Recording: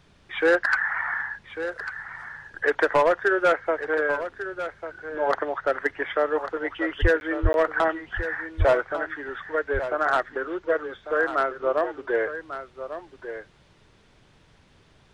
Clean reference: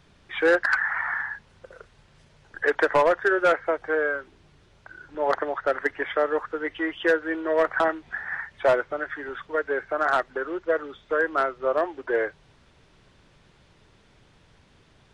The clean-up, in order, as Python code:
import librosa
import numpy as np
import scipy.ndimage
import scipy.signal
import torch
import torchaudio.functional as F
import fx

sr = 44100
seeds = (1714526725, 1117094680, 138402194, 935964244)

y = fx.highpass(x, sr, hz=140.0, slope=24, at=(7.01, 7.13), fade=0.02)
y = fx.highpass(y, sr, hz=140.0, slope=24, at=(7.42, 7.54), fade=0.02)
y = fx.highpass(y, sr, hz=140.0, slope=24, at=(8.58, 8.7), fade=0.02)
y = fx.fix_interpolate(y, sr, at_s=(7.2, 7.53), length_ms=11.0)
y = fx.fix_echo_inverse(y, sr, delay_ms=1146, level_db=-11.0)